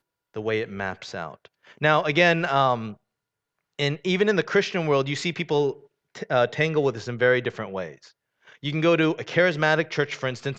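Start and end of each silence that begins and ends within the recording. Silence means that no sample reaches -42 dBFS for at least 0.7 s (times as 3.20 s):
2.94–3.79 s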